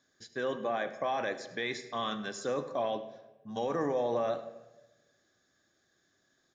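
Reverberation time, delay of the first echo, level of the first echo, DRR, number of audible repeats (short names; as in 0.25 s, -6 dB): 1.1 s, 0.103 s, -17.0 dB, 9.0 dB, 1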